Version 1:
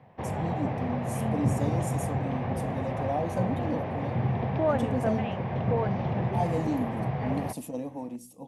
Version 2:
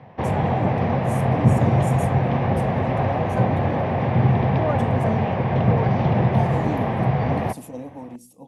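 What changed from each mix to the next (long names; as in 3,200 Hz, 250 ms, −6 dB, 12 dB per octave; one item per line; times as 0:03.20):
background +10.0 dB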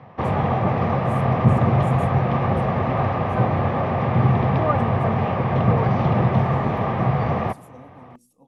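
first voice −11.5 dB
master: add parametric band 1,200 Hz +12 dB 0.22 octaves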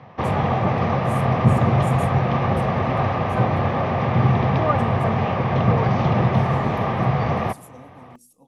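master: add high-shelf EQ 3,600 Hz +10 dB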